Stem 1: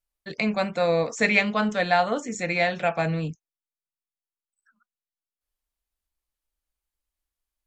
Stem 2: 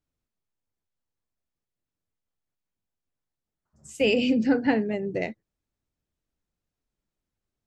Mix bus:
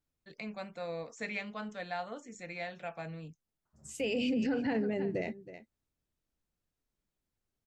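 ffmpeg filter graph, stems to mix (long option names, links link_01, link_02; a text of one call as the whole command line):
ffmpeg -i stem1.wav -i stem2.wav -filter_complex "[0:a]volume=-17dB[link_01];[1:a]volume=-2dB,asplit=2[link_02][link_03];[link_03]volume=-18.5dB,aecho=0:1:320:1[link_04];[link_01][link_02][link_04]amix=inputs=3:normalize=0,alimiter=level_in=0.5dB:limit=-24dB:level=0:latency=1:release=30,volume=-0.5dB" out.wav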